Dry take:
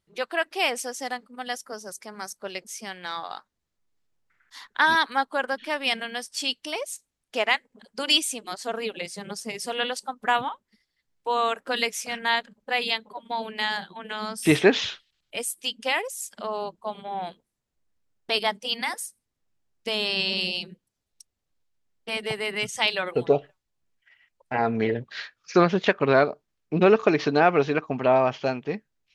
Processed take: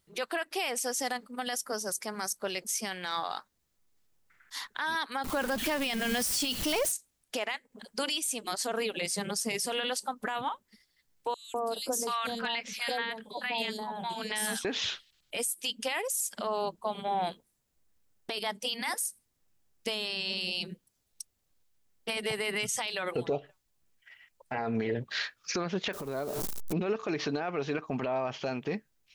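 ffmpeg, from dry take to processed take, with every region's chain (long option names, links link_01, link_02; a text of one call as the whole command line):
ffmpeg -i in.wav -filter_complex "[0:a]asettb=1/sr,asplit=3[link_01][link_02][link_03];[link_01]atrim=end=5.244[link_04];[link_02]atrim=start=5.24:end=6.92,asetpts=PTS-STARTPTS,afade=type=in:duration=0.004:curve=qsin,afade=type=out:start_time=1.676:duration=0.004:curve=qsin,aeval=exprs='val(0)+0.5*0.0237*sgn(val(0))':channel_layout=same,lowshelf=frequency=250:gain=11[link_05];[link_03]atrim=start=6.916[link_06];[link_04][link_05]acrossfade=duration=0.004:curve1=hsin:curve2=qsin[link_07];[link_07][link_06]acrossfade=duration=0.004:curve1=qsin:curve2=hsin,asettb=1/sr,asplit=3[link_08][link_09][link_10];[link_08]atrim=end=11.344[link_11];[link_09]atrim=start=11.34:end=14.65,asetpts=PTS-STARTPTS,afade=type=in:duration=0.004:curve=qsin,afade=type=out:start_time=3.306:duration=0.004:curve=qsin,acompressor=threshold=-30dB:ratio=2:attack=3.2:release=140:knee=1:detection=peak,acrossover=split=910|4300[link_12][link_13][link_14];[link_12]adelay=200[link_15];[link_13]adelay=730[link_16];[link_15][link_16][link_14]amix=inputs=3:normalize=0,atrim=end_sample=145971[link_17];[link_10]atrim=start=14.646[link_18];[link_11][link_17]acrossfade=duration=0.004:curve1=hsin:curve2=qsin[link_19];[link_19][link_18]acrossfade=duration=0.004:curve1=qsin:curve2=hsin,asettb=1/sr,asplit=3[link_20][link_21][link_22];[link_20]atrim=end=25.934[link_23];[link_21]atrim=start=25.93:end=26.73,asetpts=PTS-STARTPTS,afade=type=in:duration=0.004:curve=qsin,afade=type=out:start_time=0.796:duration=0.004:curve=qsin,aeval=exprs='val(0)+0.5*0.0335*sgn(val(0))':channel_layout=same,equalizer=frequency=2200:width_type=o:width=1.7:gain=-10.5,acompressor=threshold=-32dB:ratio=10:attack=3.2:release=140:knee=1:detection=peak[link_24];[link_22]atrim=start=26.726[link_25];[link_23][link_24]acrossfade=duration=0.004:curve1=hsin:curve2=qsin[link_26];[link_26][link_25]acrossfade=duration=0.004:curve1=qsin:curve2=hsin,highshelf=frequency=7400:gain=10,acompressor=threshold=-28dB:ratio=5,alimiter=level_in=1dB:limit=-24dB:level=0:latency=1:release=13,volume=-1dB,volume=3dB" out.wav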